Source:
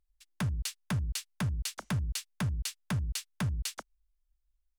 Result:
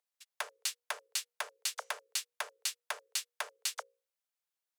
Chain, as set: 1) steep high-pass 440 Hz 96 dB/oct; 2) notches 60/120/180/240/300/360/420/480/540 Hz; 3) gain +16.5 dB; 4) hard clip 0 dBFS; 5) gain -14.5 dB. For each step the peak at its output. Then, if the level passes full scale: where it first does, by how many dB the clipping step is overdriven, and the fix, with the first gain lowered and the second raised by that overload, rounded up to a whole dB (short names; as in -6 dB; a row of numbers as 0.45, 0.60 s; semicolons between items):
-21.5, -21.5, -5.0, -5.0, -19.5 dBFS; no overload